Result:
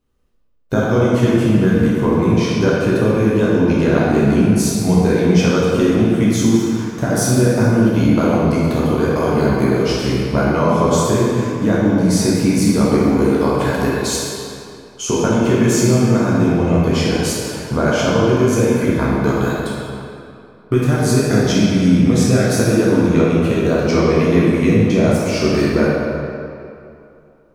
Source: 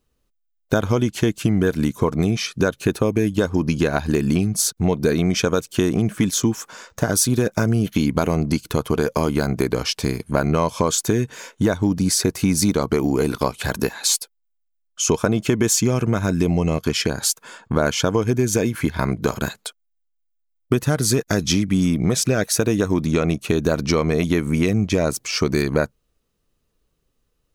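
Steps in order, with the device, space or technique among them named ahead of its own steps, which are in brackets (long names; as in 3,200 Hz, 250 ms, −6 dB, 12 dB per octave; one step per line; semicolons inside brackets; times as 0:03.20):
swimming-pool hall (convolution reverb RT60 2.6 s, pre-delay 10 ms, DRR −7 dB; high-shelf EQ 3,300 Hz −7.5 dB)
level −2 dB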